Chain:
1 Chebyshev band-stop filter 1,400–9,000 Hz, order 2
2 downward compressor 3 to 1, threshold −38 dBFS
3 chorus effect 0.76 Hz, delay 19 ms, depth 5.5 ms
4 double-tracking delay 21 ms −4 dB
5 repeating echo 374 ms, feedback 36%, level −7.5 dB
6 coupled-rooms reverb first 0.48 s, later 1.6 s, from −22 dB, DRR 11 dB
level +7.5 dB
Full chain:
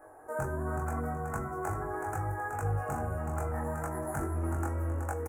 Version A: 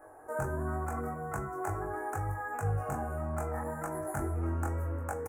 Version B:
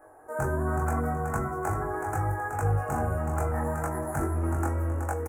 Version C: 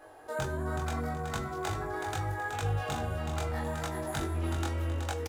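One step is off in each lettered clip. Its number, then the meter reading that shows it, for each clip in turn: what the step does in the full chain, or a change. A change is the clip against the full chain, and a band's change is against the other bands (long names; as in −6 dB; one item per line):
5, echo-to-direct ratio −5.0 dB to −11.0 dB
2, average gain reduction 4.5 dB
1, 8 kHz band +3.5 dB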